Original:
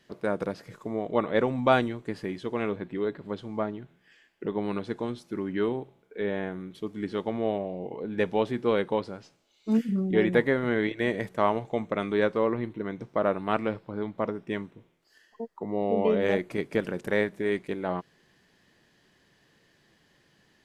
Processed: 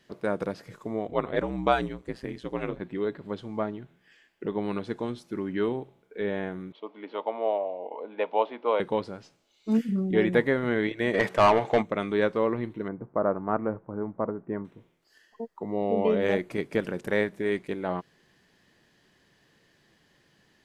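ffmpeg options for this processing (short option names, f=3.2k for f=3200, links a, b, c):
-filter_complex "[0:a]asettb=1/sr,asplit=3[a][b][c];[a]atrim=end=1.074[d];[b]atrim=start=1.07:end=2.8,asetpts=PTS-STARTPTS,afade=t=in:d=0.004:c=qsin,afade=t=out:st=1.726:d=0.004:c=qsin,aeval=exprs='val(0)*sin(2*PI*63*n/s)':c=same[e];[c]atrim=start=2.796[f];[d][e]acrossfade=d=0.004:c1=hsin:c2=qsin[g];[g][f]acrossfade=d=0.004:c1=qsin:c2=hsin,asettb=1/sr,asplit=3[h][i][j];[h]atrim=end=6.724[k];[i]atrim=start=6.72:end=8.8,asetpts=PTS-STARTPTS,afade=t=in:d=0.004:c=qsin,afade=t=out:st=2.076:d=0.004:c=qsin,highpass=f=340:w=0.5412,highpass=f=340:w=1.3066,equalizer=f=370:t=q:w=4:g=-9,equalizer=f=620:t=q:w=4:g=6,equalizer=f=950:t=q:w=4:g=9,equalizer=f=1.7k:t=q:w=4:g=-9,lowpass=f=3.3k:w=0.5412,lowpass=f=3.3k:w=1.3066[l];[j]atrim=start=8.796[m];[k][l]acrossfade=d=0.004:c1=hsin:c2=qsin[n];[n][m]acrossfade=d=0.004:c1=qsin:c2=hsin,asplit=3[o][p][q];[o]afade=t=out:st=11.13:d=0.02[r];[p]asplit=2[s][t];[t]highpass=f=720:p=1,volume=22dB,asoftclip=type=tanh:threshold=-9.5dB[u];[s][u]amix=inputs=2:normalize=0,lowpass=f=2.7k:p=1,volume=-6dB,afade=t=in:st=11.13:d=0.02,afade=t=out:st=11.81:d=0.02[v];[q]afade=t=in:st=11.81:d=0.02[w];[r][v][w]amix=inputs=3:normalize=0,asettb=1/sr,asplit=3[x][y][z];[x]atrim=end=12.884[aa];[y]atrim=start=12.88:end=14.65,asetpts=PTS-STARTPTS,afade=t=in:d=0.004:c=qsin,afade=t=out:st=1.766:d=0.004:c=qsin,lowpass=f=1.4k:w=0.5412,lowpass=f=1.4k:w=1.3066[ab];[z]atrim=start=14.646[ac];[aa][ab]acrossfade=d=0.004:c1=hsin:c2=qsin[ad];[ad][ac]acrossfade=d=0.004:c1=qsin:c2=hsin"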